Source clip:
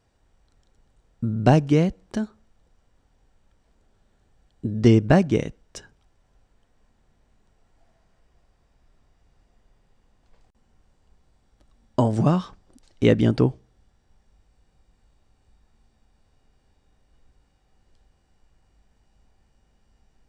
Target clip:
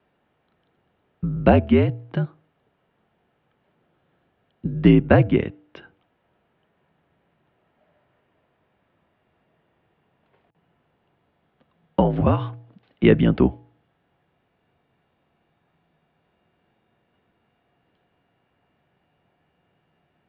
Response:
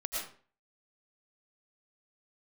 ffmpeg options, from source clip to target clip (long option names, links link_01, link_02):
-af "bandreject=frequency=180.6:width_type=h:width=4,bandreject=frequency=361.2:width_type=h:width=4,bandreject=frequency=541.8:width_type=h:width=4,bandreject=frequency=722.4:width_type=h:width=4,bandreject=frequency=903:width_type=h:width=4,highpass=frequency=170:width_type=q:width=0.5412,highpass=frequency=170:width_type=q:width=1.307,lowpass=frequency=3300:width_type=q:width=0.5176,lowpass=frequency=3300:width_type=q:width=0.7071,lowpass=frequency=3300:width_type=q:width=1.932,afreqshift=-62,volume=3.5dB"